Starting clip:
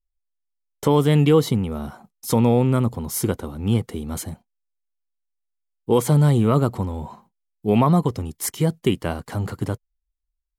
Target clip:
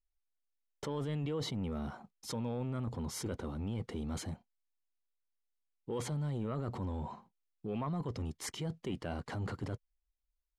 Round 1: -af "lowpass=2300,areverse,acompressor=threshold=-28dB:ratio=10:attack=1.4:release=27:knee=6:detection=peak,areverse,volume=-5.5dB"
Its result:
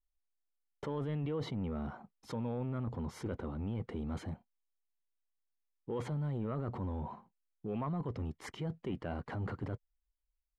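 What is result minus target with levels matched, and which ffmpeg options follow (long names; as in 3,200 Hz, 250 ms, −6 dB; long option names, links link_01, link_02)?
4,000 Hz band −7.0 dB
-af "lowpass=5400,areverse,acompressor=threshold=-28dB:ratio=10:attack=1.4:release=27:knee=6:detection=peak,areverse,volume=-5.5dB"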